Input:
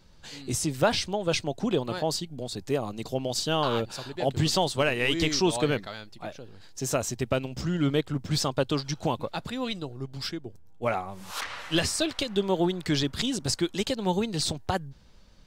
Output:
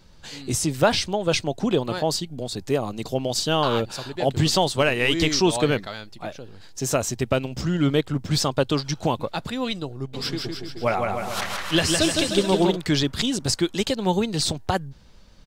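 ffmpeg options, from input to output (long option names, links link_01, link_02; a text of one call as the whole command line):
ffmpeg -i in.wav -filter_complex "[0:a]asplit=3[link_01][link_02][link_03];[link_01]afade=type=out:start_time=10.13:duration=0.02[link_04];[link_02]aecho=1:1:160|304|433.6|550.2|655.2:0.631|0.398|0.251|0.158|0.1,afade=type=in:start_time=10.13:duration=0.02,afade=type=out:start_time=12.75:duration=0.02[link_05];[link_03]afade=type=in:start_time=12.75:duration=0.02[link_06];[link_04][link_05][link_06]amix=inputs=3:normalize=0,volume=4.5dB" out.wav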